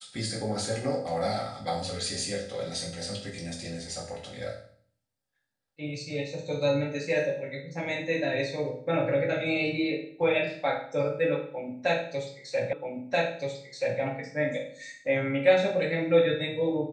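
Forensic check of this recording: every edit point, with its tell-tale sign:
0:12.73: the same again, the last 1.28 s

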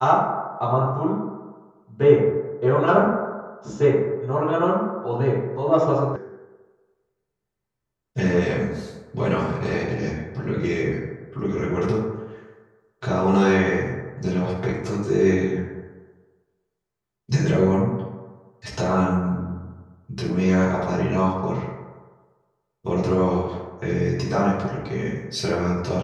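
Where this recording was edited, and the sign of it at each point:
0:06.16: cut off before it has died away

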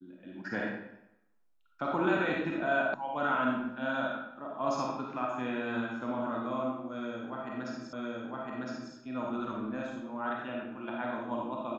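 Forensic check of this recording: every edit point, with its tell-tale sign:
0:02.94: cut off before it has died away
0:07.93: the same again, the last 1.01 s

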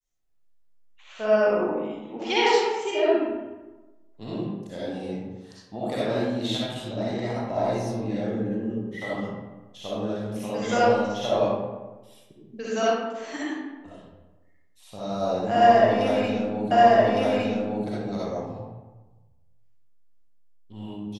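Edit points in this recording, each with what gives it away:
0:16.71: the same again, the last 1.16 s

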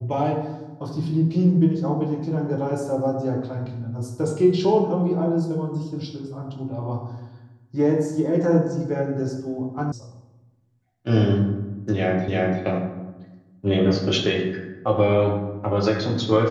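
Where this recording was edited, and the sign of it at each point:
0:09.92: cut off before it has died away
0:12.28: the same again, the last 0.34 s

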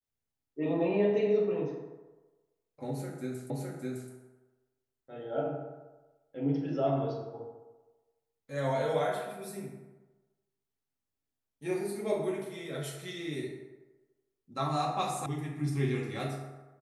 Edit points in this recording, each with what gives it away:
0:03.50: the same again, the last 0.61 s
0:15.26: cut off before it has died away

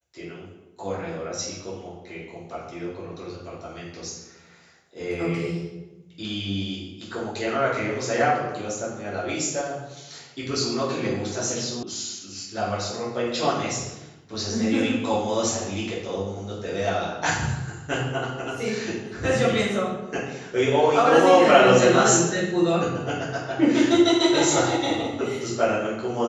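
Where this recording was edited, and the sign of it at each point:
0:11.83: cut off before it has died away

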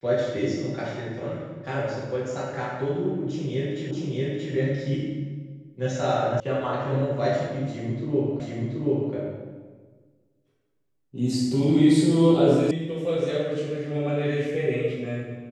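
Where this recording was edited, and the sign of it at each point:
0:03.91: the same again, the last 0.63 s
0:06.40: cut off before it has died away
0:08.40: the same again, the last 0.73 s
0:12.71: cut off before it has died away

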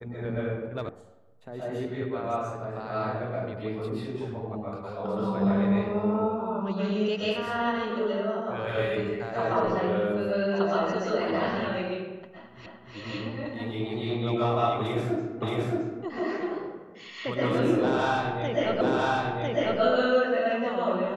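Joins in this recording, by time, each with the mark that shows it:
0:00.89: cut off before it has died away
0:12.66: the same again, the last 0.3 s
0:15.42: the same again, the last 0.62 s
0:18.81: the same again, the last 1 s

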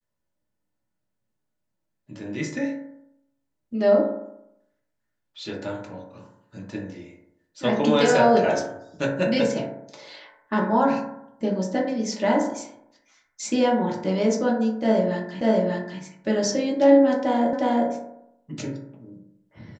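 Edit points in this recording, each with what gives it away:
0:15.41: the same again, the last 0.59 s
0:17.53: the same again, the last 0.36 s

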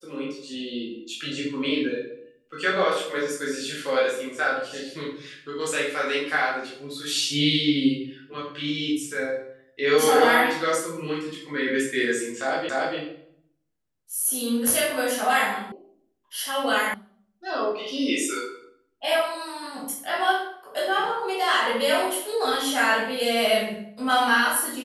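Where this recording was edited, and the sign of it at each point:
0:12.69: the same again, the last 0.29 s
0:15.72: cut off before it has died away
0:16.94: cut off before it has died away

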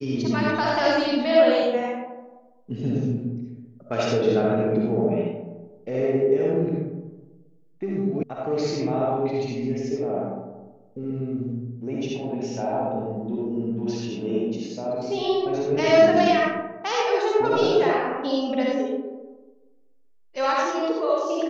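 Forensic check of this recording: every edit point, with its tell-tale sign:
0:08.23: cut off before it has died away

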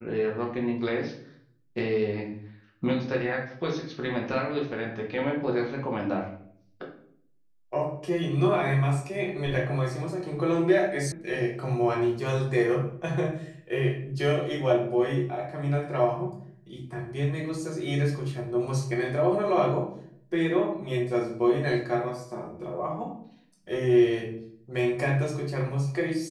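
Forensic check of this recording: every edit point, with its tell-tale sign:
0:11.12: cut off before it has died away

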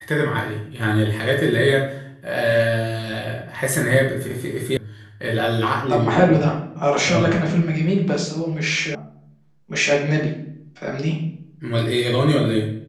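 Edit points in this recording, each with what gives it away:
0:04.77: cut off before it has died away
0:08.95: cut off before it has died away

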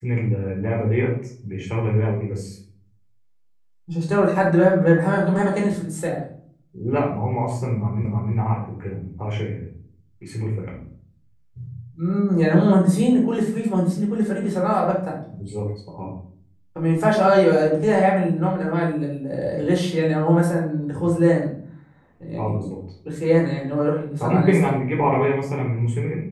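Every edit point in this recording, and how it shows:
0:08.05: the same again, the last 0.31 s

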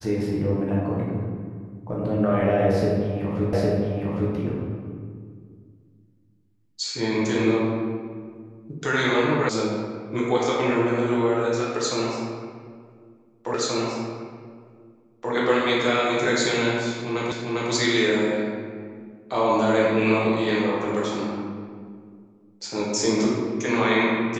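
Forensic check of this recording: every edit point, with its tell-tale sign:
0:03.53: the same again, the last 0.81 s
0:09.49: cut off before it has died away
0:13.54: the same again, the last 1.78 s
0:17.32: the same again, the last 0.4 s

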